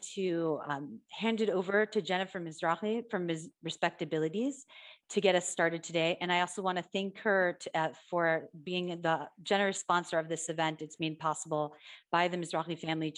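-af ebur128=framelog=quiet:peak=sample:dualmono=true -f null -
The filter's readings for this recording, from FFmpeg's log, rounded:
Integrated loudness:
  I:         -29.9 LUFS
  Threshold: -40.0 LUFS
Loudness range:
  LRA:         2.2 LU
  Threshold: -49.8 LUFS
  LRA low:   -30.8 LUFS
  LRA high:  -28.6 LUFS
Sample peak:
  Peak:      -12.7 dBFS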